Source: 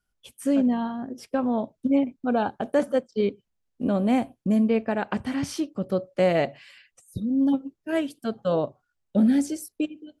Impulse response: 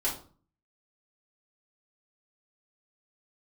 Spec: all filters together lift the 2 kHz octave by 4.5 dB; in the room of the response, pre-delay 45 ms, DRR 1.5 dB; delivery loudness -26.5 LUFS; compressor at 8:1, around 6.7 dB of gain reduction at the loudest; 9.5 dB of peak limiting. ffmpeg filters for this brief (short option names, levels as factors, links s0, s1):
-filter_complex "[0:a]equalizer=f=2000:t=o:g=5.5,acompressor=threshold=0.0708:ratio=8,alimiter=limit=0.0668:level=0:latency=1,asplit=2[s0][s1];[1:a]atrim=start_sample=2205,adelay=45[s2];[s1][s2]afir=irnorm=-1:irlink=0,volume=0.376[s3];[s0][s3]amix=inputs=2:normalize=0,volume=1.58"